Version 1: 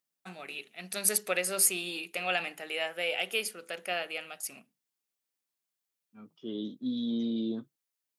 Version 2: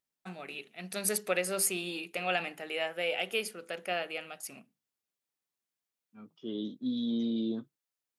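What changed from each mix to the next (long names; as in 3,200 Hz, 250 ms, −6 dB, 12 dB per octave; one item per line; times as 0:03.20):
first voice: add spectral tilt −1.5 dB per octave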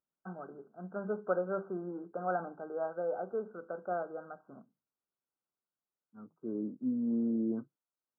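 master: add linear-phase brick-wall low-pass 1,600 Hz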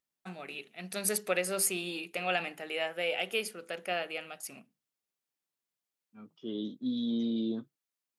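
master: remove linear-phase brick-wall low-pass 1,600 Hz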